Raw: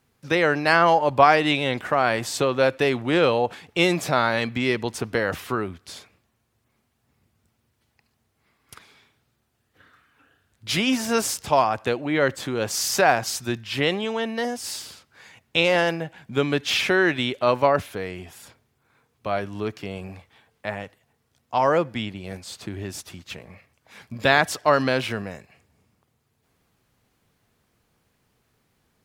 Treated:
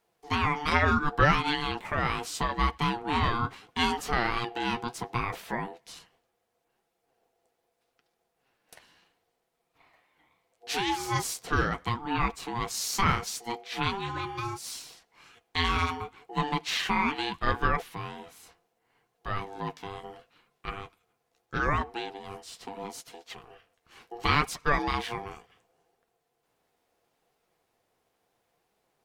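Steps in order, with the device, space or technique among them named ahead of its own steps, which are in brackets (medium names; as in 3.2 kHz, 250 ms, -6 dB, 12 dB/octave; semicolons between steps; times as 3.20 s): alien voice (ring modulator 590 Hz; flange 0.73 Hz, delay 4.3 ms, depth 8.7 ms, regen -45%)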